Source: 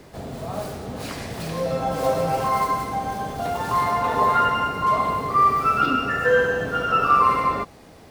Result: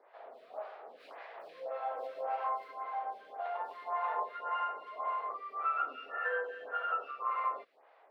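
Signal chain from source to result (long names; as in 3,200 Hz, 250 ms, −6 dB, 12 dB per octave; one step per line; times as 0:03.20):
high-pass filter 570 Hz 24 dB per octave
high-frequency loss of the air 450 metres
downward compressor, threshold −21 dBFS, peak gain reduction 6 dB
phaser with staggered stages 1.8 Hz
level −7 dB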